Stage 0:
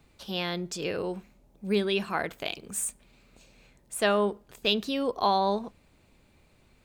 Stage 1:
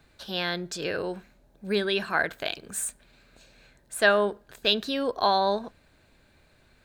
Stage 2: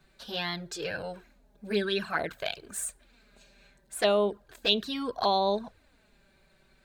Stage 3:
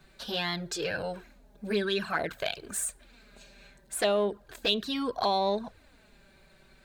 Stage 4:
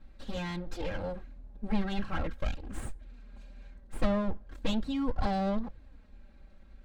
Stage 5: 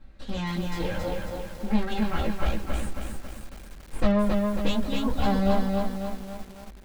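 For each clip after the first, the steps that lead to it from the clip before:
thirty-one-band graphic EQ 200 Hz −3 dB, 630 Hz +4 dB, 1,600 Hz +12 dB, 4,000 Hz +6 dB
flanger swept by the level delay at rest 5.4 ms, full sweep at −20 dBFS
in parallel at −9.5 dB: soft clipping −27.5 dBFS, distortion −8 dB; on the sum: downward compressor 1.5 to 1, threshold −35 dBFS, peak gain reduction 6.5 dB; level +2.5 dB
lower of the sound and its delayed copy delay 3.7 ms; RIAA equalisation playback; level −5 dB
chorus effect 0.37 Hz, delay 15 ms, depth 4.4 ms; feedback echo at a low word length 273 ms, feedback 55%, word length 9 bits, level −3 dB; level +7.5 dB

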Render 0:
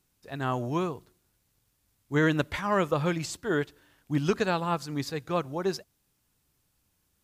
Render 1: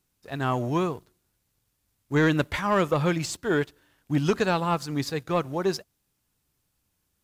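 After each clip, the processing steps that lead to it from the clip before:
leveller curve on the samples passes 1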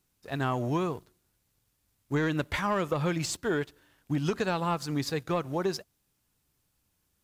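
downward compressor, threshold −25 dBFS, peak gain reduction 7.5 dB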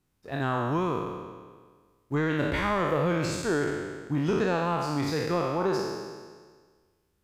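peak hold with a decay on every bin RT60 1.59 s
high-shelf EQ 3,000 Hz −10 dB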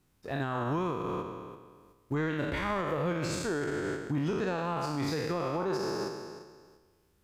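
in parallel at 0 dB: output level in coarse steps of 13 dB
on the sum: brickwall limiter −24 dBFS, peak gain reduction 13.5 dB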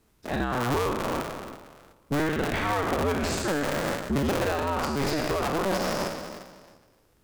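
sub-harmonics by changed cycles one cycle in 2, inverted
level +5 dB

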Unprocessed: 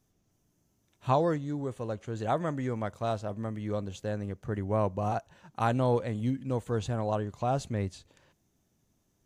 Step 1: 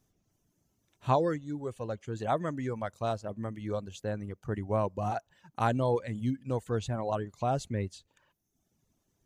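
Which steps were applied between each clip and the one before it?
reverb reduction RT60 0.9 s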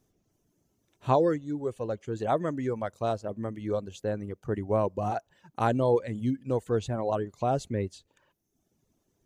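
parametric band 400 Hz +6 dB 1.4 octaves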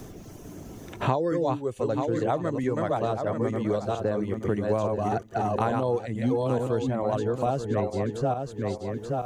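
feedback delay that plays each chunk backwards 439 ms, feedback 42%, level −3 dB
multiband upward and downward compressor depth 100%

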